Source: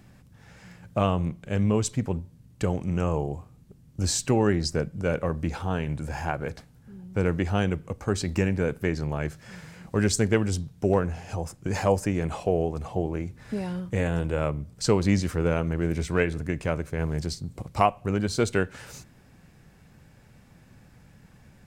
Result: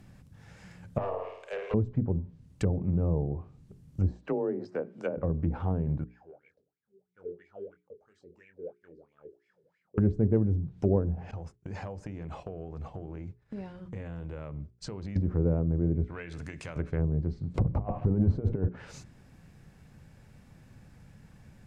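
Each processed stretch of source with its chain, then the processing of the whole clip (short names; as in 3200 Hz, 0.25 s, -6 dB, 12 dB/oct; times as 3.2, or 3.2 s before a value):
0.98–1.74 steep high-pass 400 Hz 96 dB/oct + overloaded stage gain 27.5 dB + flutter echo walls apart 9.1 m, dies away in 0.72 s
4.12–5.17 HPF 340 Hz + frequency shift +26 Hz
6.04–9.98 band shelf 1300 Hz -12 dB 2.3 oct + wah 3 Hz 390–2300 Hz, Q 15 + doubler 23 ms -8.5 dB
11.31–15.16 LPF 3000 Hz 6 dB/oct + expander -35 dBFS + compressor, threshold -34 dBFS
16.04–16.76 HPF 47 Hz + tilt shelf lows -5.5 dB, about 770 Hz + compressor 4:1, threshold -35 dBFS
17.54–18.69 negative-ratio compressor -29 dBFS, ratio -0.5 + sample leveller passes 2
whole clip: notches 60/120/180/240/300/360/420 Hz; treble ducked by the level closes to 510 Hz, closed at -23.5 dBFS; low shelf 250 Hz +5.5 dB; gain -3.5 dB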